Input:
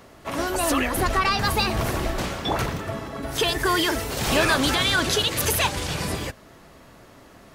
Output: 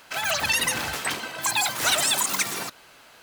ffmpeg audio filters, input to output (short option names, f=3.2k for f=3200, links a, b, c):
-af "lowshelf=f=230:g=-12,asetrate=103194,aresample=44100"